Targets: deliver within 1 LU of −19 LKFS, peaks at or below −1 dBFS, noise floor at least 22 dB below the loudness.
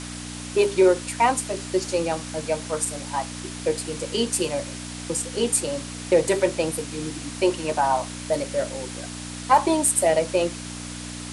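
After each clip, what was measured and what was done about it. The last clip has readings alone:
mains hum 60 Hz; hum harmonics up to 300 Hz; level of the hum −35 dBFS; background noise floor −35 dBFS; target noise floor −46 dBFS; integrated loudness −24.0 LKFS; sample peak −6.0 dBFS; target loudness −19.0 LKFS
→ hum removal 60 Hz, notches 5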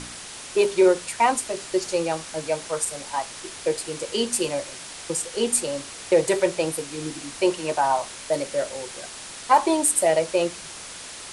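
mains hum none found; background noise floor −39 dBFS; target noise floor −46 dBFS
→ broadband denoise 7 dB, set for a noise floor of −39 dBFS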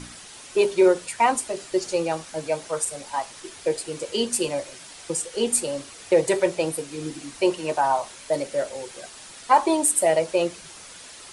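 background noise floor −44 dBFS; target noise floor −46 dBFS
→ broadband denoise 6 dB, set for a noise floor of −44 dBFS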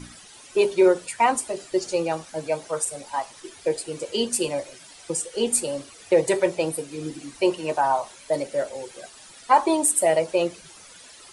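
background noise floor −47 dBFS; integrated loudness −24.0 LKFS; sample peak −6.5 dBFS; target loudness −19.0 LKFS
→ level +5 dB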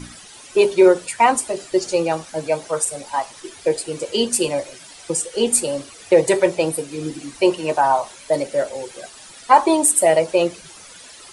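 integrated loudness −19.0 LKFS; sample peak −1.5 dBFS; background noise floor −42 dBFS

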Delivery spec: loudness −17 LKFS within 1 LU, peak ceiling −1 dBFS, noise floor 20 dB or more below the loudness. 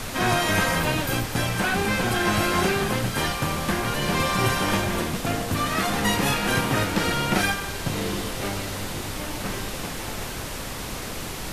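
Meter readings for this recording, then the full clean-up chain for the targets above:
background noise floor −33 dBFS; target noise floor −45 dBFS; integrated loudness −24.5 LKFS; sample peak −9.0 dBFS; target loudness −17.0 LKFS
→ noise reduction from a noise print 12 dB
level +7.5 dB

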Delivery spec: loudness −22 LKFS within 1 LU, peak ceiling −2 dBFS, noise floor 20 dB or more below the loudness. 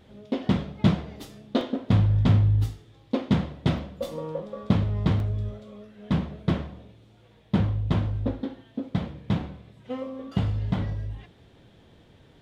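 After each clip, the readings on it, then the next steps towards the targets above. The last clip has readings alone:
number of dropouts 3; longest dropout 1.3 ms; integrated loudness −27.0 LKFS; sample peak −7.5 dBFS; target loudness −22.0 LKFS
→ repair the gap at 0:01.61/0:03.78/0:05.20, 1.3 ms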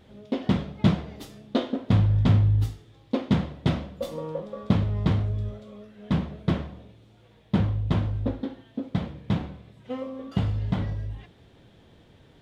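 number of dropouts 0; integrated loudness −27.0 LKFS; sample peak −7.5 dBFS; target loudness −22.0 LKFS
→ level +5 dB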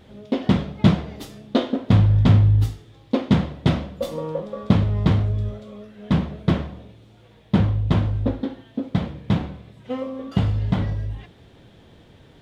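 integrated loudness −22.0 LKFS; sample peak −2.5 dBFS; background noise floor −51 dBFS

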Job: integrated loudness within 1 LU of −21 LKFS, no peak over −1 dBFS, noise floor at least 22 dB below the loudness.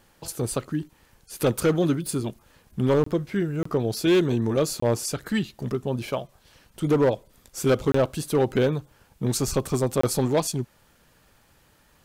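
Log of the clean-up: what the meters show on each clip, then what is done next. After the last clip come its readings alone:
share of clipped samples 1.1%; peaks flattened at −14.5 dBFS; number of dropouts 5; longest dropout 24 ms; integrated loudness −25.0 LKFS; sample peak −14.5 dBFS; target loudness −21.0 LKFS
→ clipped peaks rebuilt −14.5 dBFS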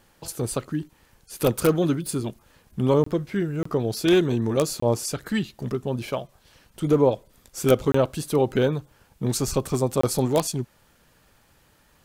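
share of clipped samples 0.0%; number of dropouts 5; longest dropout 24 ms
→ repair the gap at 0:03.04/0:03.63/0:04.80/0:07.92/0:10.01, 24 ms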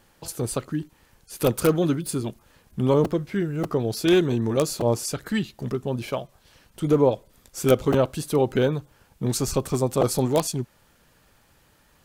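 number of dropouts 0; integrated loudness −24.5 LKFS; sample peak −5.5 dBFS; target loudness −21.0 LKFS
→ level +3.5 dB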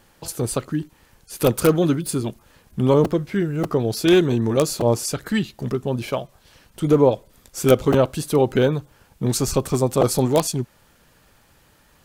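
integrated loudness −21.0 LKFS; sample peak −2.0 dBFS; background noise floor −57 dBFS

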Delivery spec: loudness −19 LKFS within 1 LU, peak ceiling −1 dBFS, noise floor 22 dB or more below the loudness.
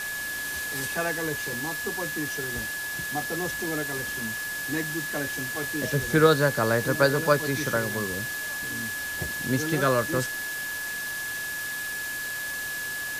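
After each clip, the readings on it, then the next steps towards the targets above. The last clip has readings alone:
interfering tone 1,700 Hz; level of the tone −31 dBFS; background noise floor −33 dBFS; target noise floor −49 dBFS; integrated loudness −27.0 LKFS; sample peak −7.0 dBFS; target loudness −19.0 LKFS
→ notch filter 1,700 Hz, Q 30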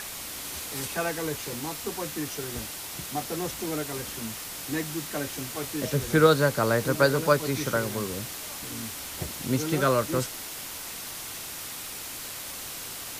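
interfering tone none found; background noise floor −38 dBFS; target noise floor −51 dBFS
→ broadband denoise 13 dB, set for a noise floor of −38 dBFS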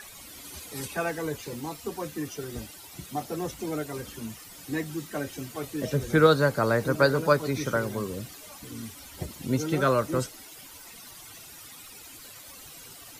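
background noise floor −47 dBFS; target noise floor −50 dBFS
→ broadband denoise 6 dB, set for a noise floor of −47 dBFS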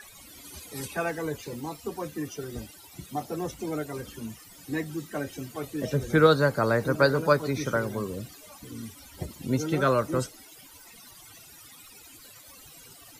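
background noise floor −51 dBFS; integrated loudness −28.0 LKFS; sample peak −7.0 dBFS; target loudness −19.0 LKFS
→ level +9 dB
brickwall limiter −1 dBFS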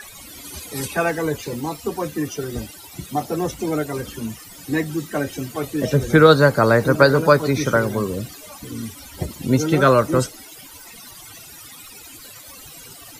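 integrated loudness −19.5 LKFS; sample peak −1.0 dBFS; background noise floor −42 dBFS

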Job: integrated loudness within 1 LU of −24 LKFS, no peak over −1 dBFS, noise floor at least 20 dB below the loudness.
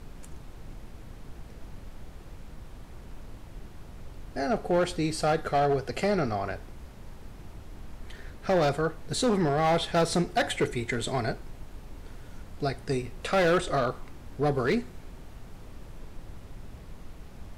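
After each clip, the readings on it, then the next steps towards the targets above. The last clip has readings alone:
share of clipped samples 1.1%; peaks flattened at −19.0 dBFS; background noise floor −46 dBFS; target noise floor −48 dBFS; integrated loudness −27.5 LKFS; sample peak −19.0 dBFS; target loudness −24.0 LKFS
→ clipped peaks rebuilt −19 dBFS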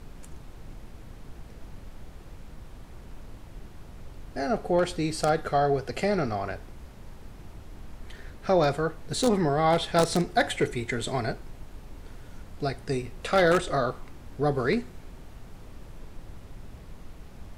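share of clipped samples 0.0%; background noise floor −46 dBFS; target noise floor −47 dBFS
→ noise reduction from a noise print 6 dB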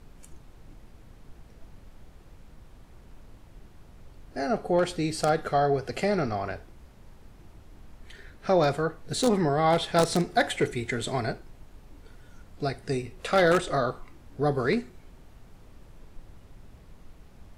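background noise floor −52 dBFS; integrated loudness −26.5 LKFS; sample peak −10.0 dBFS; target loudness −24.0 LKFS
→ level +2.5 dB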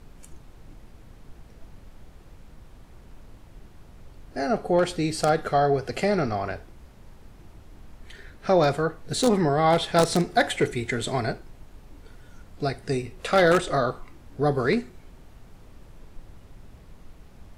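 integrated loudness −24.0 LKFS; sample peak −7.5 dBFS; background noise floor −50 dBFS

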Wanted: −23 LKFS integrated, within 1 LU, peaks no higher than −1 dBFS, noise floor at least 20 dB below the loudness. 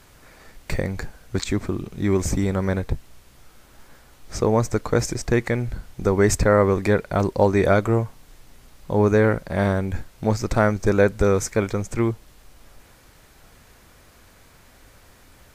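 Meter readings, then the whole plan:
integrated loudness −22.0 LKFS; sample peak −4.5 dBFS; target loudness −23.0 LKFS
→ level −1 dB

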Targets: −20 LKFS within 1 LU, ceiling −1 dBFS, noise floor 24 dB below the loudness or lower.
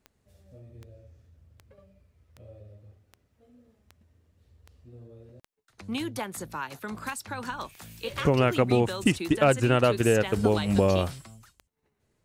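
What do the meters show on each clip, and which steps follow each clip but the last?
number of clicks 16; integrated loudness −26.0 LKFS; sample peak −8.5 dBFS; target loudness −20.0 LKFS
→ click removal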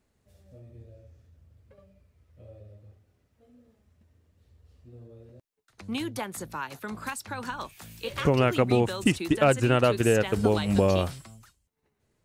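number of clicks 0; integrated loudness −26.0 LKFS; sample peak −8.5 dBFS; target loudness −20.0 LKFS
→ level +6 dB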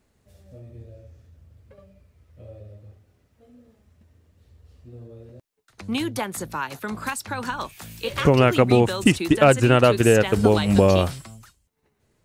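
integrated loudness −20.0 LKFS; sample peak −2.5 dBFS; background noise floor −69 dBFS

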